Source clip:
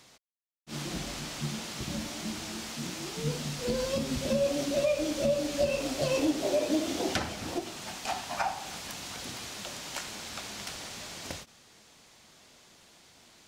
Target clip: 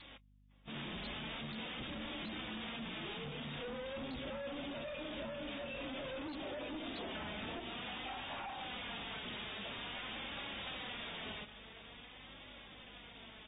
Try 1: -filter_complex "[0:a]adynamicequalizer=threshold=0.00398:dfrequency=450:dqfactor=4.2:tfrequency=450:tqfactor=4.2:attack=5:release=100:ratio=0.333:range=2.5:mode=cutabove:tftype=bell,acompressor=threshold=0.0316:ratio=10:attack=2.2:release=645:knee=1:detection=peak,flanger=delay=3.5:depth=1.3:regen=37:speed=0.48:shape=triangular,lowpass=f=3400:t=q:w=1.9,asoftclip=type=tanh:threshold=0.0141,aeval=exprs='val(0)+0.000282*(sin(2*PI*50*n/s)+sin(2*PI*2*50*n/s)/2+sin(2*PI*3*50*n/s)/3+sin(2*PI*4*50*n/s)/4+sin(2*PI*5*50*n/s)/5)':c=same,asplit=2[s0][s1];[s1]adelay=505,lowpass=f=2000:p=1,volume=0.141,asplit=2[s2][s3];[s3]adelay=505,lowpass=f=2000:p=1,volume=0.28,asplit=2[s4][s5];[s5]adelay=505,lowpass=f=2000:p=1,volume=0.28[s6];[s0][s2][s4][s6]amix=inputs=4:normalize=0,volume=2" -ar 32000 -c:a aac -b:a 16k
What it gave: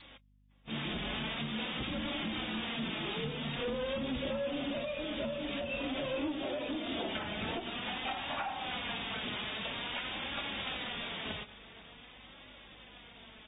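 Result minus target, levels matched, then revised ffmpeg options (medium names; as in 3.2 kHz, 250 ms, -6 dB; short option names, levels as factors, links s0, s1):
saturation: distortion -8 dB
-filter_complex "[0:a]adynamicequalizer=threshold=0.00398:dfrequency=450:dqfactor=4.2:tfrequency=450:tqfactor=4.2:attack=5:release=100:ratio=0.333:range=2.5:mode=cutabove:tftype=bell,acompressor=threshold=0.0316:ratio=10:attack=2.2:release=645:knee=1:detection=peak,flanger=delay=3.5:depth=1.3:regen=37:speed=0.48:shape=triangular,lowpass=f=3400:t=q:w=1.9,asoftclip=type=tanh:threshold=0.00376,aeval=exprs='val(0)+0.000282*(sin(2*PI*50*n/s)+sin(2*PI*2*50*n/s)/2+sin(2*PI*3*50*n/s)/3+sin(2*PI*4*50*n/s)/4+sin(2*PI*5*50*n/s)/5)':c=same,asplit=2[s0][s1];[s1]adelay=505,lowpass=f=2000:p=1,volume=0.141,asplit=2[s2][s3];[s3]adelay=505,lowpass=f=2000:p=1,volume=0.28,asplit=2[s4][s5];[s5]adelay=505,lowpass=f=2000:p=1,volume=0.28[s6];[s0][s2][s4][s6]amix=inputs=4:normalize=0,volume=2" -ar 32000 -c:a aac -b:a 16k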